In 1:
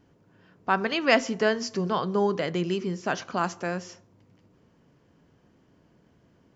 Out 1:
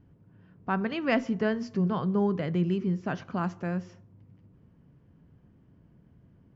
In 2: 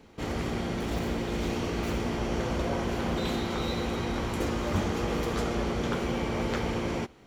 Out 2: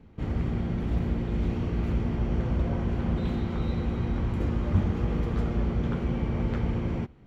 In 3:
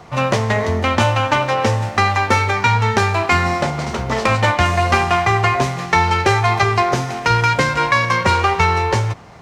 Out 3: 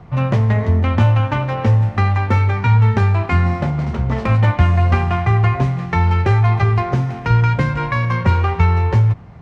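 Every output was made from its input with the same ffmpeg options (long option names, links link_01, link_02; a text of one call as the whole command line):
ffmpeg -i in.wav -af "bass=frequency=250:gain=14,treble=frequency=4000:gain=-13,volume=-6.5dB" out.wav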